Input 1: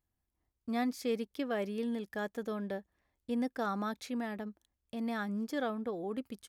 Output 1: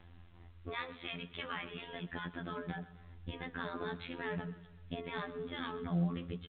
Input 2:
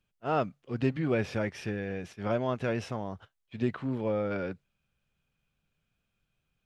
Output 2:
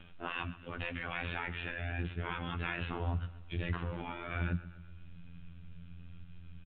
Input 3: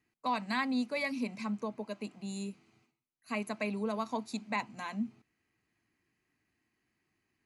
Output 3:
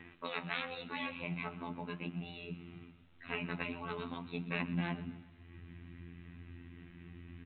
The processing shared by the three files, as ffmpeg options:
ffmpeg -i in.wav -af "afftfilt=real='re*lt(hypot(re,im),0.0631)':imag='im*lt(hypot(re,im),0.0631)':win_size=1024:overlap=0.75,asubboost=boost=7.5:cutoff=230,acompressor=mode=upward:threshold=-41dB:ratio=2.5,afftfilt=real='hypot(re,im)*cos(PI*b)':imag='0':win_size=2048:overlap=0.75,flanger=delay=3.2:depth=8.4:regen=-75:speed=0.41:shape=triangular,aecho=1:1:127|254|381|508|635:0.15|0.0793|0.042|0.0223|0.0118,volume=11.5dB" -ar 8000 -c:a pcm_alaw out.wav

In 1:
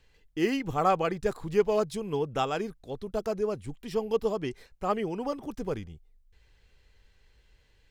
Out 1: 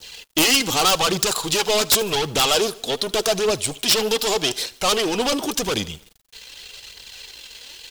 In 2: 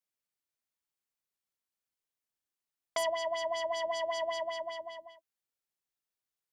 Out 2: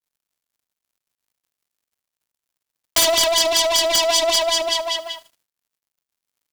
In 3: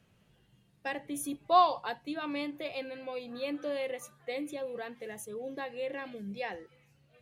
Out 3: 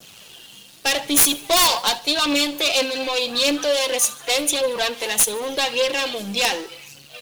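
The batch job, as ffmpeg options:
ffmpeg -i in.wav -filter_complex "[0:a]aeval=exprs='if(lt(val(0),0),0.447*val(0),val(0))':channel_layout=same,acrossover=split=720|3700[link_01][link_02][link_03];[link_01]alimiter=level_in=2dB:limit=-24dB:level=0:latency=1:release=320,volume=-2dB[link_04];[link_04][link_02][link_03]amix=inputs=3:normalize=0,adynamicequalizer=threshold=0.00224:dfrequency=2200:dqfactor=1.3:tfrequency=2200:tqfactor=1.3:attack=5:release=100:ratio=0.375:range=3.5:mode=cutabove:tftype=bell,asplit=2[link_05][link_06];[link_06]highpass=frequency=720:poles=1,volume=29dB,asoftclip=type=tanh:threshold=-15.5dB[link_07];[link_05][link_07]amix=inputs=2:normalize=0,lowpass=frequency=3100:poles=1,volume=-6dB,aexciter=amount=6.7:drive=3.8:freq=2800,aphaser=in_gain=1:out_gain=1:delay=4.6:decay=0.41:speed=0.86:type=triangular,aeval=exprs='(mod(2.51*val(0)+1,2)-1)/2.51':channel_layout=same,aecho=1:1:76|152|228|304:0.0841|0.0454|0.0245|0.0132,acrusher=bits=7:mix=0:aa=0.5,volume=1.5dB" out.wav

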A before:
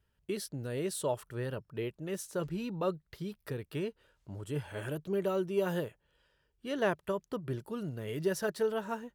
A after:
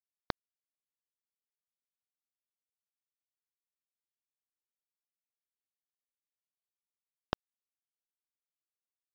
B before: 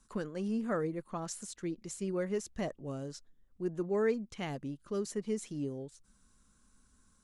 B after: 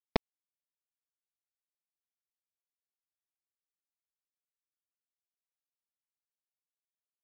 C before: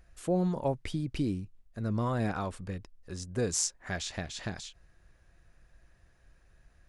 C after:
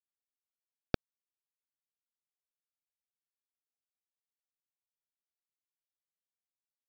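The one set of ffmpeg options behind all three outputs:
ffmpeg -i in.wav -filter_complex "[0:a]adynamicequalizer=threshold=0.00631:dfrequency=330:dqfactor=1.4:tfrequency=330:tqfactor=1.4:attack=5:release=100:ratio=0.375:range=3:mode=boostabove:tftype=bell,alimiter=limit=-24dB:level=0:latency=1:release=44,acompressor=threshold=-46dB:ratio=3,acrossover=split=630[link_01][link_02];[link_01]aeval=exprs='val(0)*(1-1/2+1/2*cos(2*PI*6.4*n/s))':channel_layout=same[link_03];[link_02]aeval=exprs='val(0)*(1-1/2-1/2*cos(2*PI*6.4*n/s))':channel_layout=same[link_04];[link_03][link_04]amix=inputs=2:normalize=0,aresample=11025,acrusher=bits=5:mix=0:aa=0.000001,aresample=44100,volume=17.5dB" out.wav

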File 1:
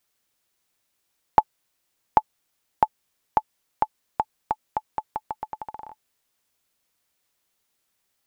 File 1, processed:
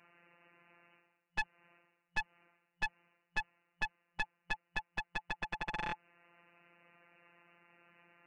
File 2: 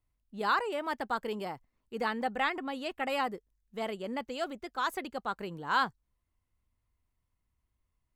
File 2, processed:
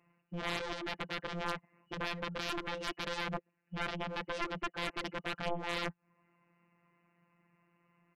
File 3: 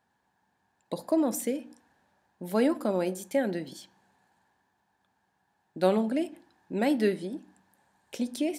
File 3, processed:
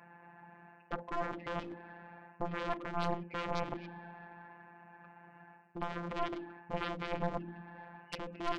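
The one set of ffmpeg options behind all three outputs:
ffmpeg -i in.wav -af "afftfilt=real='re*between(b*sr/4096,110,2900)':imag='im*between(b*sr/4096,110,2900)':win_size=4096:overlap=0.75,areverse,acompressor=threshold=-38dB:ratio=12,areverse,alimiter=level_in=18dB:limit=-24dB:level=0:latency=1:release=335,volume=-18dB,aresample=16000,aeval=exprs='clip(val(0),-1,0.00224)':channel_layout=same,aresample=44100,afftfilt=real='hypot(re,im)*cos(PI*b)':imag='0':win_size=1024:overlap=0.75,aeval=exprs='0.0119*(cos(1*acos(clip(val(0)/0.0119,-1,1)))-cos(1*PI/2))+0.00133*(cos(6*acos(clip(val(0)/0.0119,-1,1)))-cos(6*PI/2))+0.00531*(cos(7*acos(clip(val(0)/0.0119,-1,1)))-cos(7*PI/2))':channel_layout=same,volume=15dB" out.wav

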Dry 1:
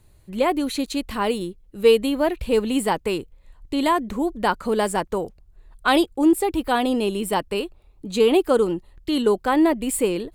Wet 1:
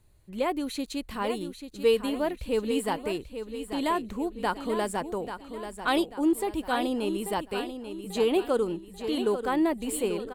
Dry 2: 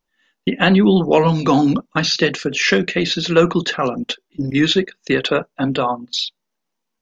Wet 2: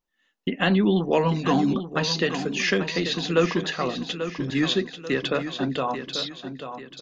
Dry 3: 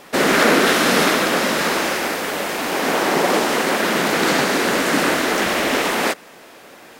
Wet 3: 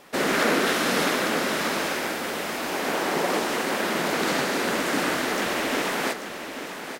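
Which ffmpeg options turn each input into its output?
ffmpeg -i in.wav -af "aecho=1:1:839|1678|2517|3356:0.335|0.137|0.0563|0.0231,volume=-7.5dB" out.wav

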